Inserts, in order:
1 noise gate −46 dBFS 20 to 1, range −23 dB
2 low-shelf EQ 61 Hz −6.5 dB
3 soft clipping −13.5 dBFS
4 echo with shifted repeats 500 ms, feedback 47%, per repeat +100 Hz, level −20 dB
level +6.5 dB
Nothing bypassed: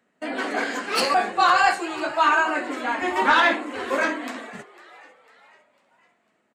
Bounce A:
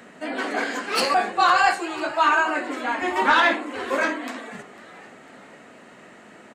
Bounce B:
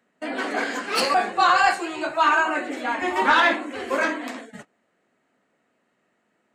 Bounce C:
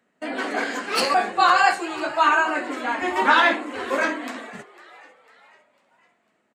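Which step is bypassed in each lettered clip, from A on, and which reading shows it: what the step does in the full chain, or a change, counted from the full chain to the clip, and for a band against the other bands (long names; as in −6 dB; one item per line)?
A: 1, change in momentary loudness spread +1 LU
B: 4, echo-to-direct ratio −19.0 dB to none audible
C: 3, distortion level −23 dB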